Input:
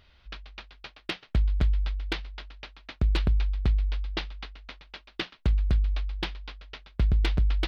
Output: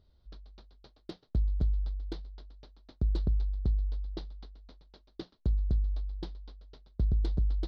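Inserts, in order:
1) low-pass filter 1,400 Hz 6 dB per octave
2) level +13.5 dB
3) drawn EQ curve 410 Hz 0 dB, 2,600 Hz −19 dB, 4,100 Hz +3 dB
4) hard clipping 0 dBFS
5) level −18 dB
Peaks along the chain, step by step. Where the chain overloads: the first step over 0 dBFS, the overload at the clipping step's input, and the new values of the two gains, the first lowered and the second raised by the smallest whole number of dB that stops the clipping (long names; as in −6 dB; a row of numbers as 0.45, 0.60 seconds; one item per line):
−16.5, −3.0, −3.0, −3.0, −21.0 dBFS
no step passes full scale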